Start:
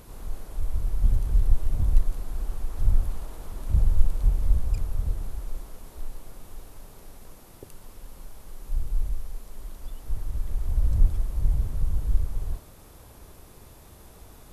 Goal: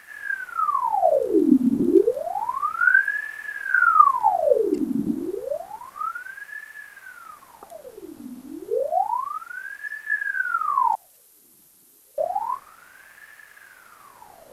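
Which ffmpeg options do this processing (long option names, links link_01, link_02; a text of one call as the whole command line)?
ffmpeg -i in.wav -filter_complex "[0:a]asettb=1/sr,asplit=3[link_01][link_02][link_03];[link_01]atrim=end=10.954[link_04];[link_02]atrim=start=10.95:end=12.18,asetpts=PTS-STARTPTS,afade=type=in:duration=0.004:curve=qsin,afade=type=out:start_time=1.226:duration=0.004:curve=qsin,aderivative[link_05];[link_03]atrim=start=12.176[link_06];[link_04][link_05]acrossfade=duration=0.004:curve1=hsin:curve2=qsin[link_07];[link_07][link_06]acrossfade=duration=0.004:curve1=qsin:curve2=hsin,aeval=exprs='val(0)*sin(2*PI*990*n/s+990*0.75/0.3*sin(2*PI*0.3*n/s))':channel_layout=same,volume=2.5dB" out.wav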